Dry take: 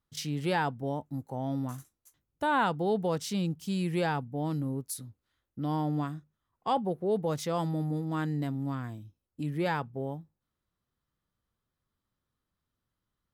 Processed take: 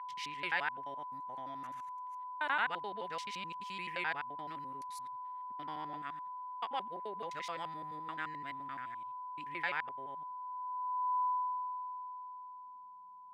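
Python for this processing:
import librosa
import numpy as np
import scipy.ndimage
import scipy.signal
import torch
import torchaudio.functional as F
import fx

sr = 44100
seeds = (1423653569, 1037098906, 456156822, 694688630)

y = fx.local_reverse(x, sr, ms=86.0)
y = y + 10.0 ** (-34.0 / 20.0) * np.sin(2.0 * np.pi * 1000.0 * np.arange(len(y)) / sr)
y = fx.filter_sweep_bandpass(y, sr, from_hz=2100.0, to_hz=200.0, start_s=10.38, end_s=13.01, q=2.5)
y = y * 10.0 ** (5.0 / 20.0)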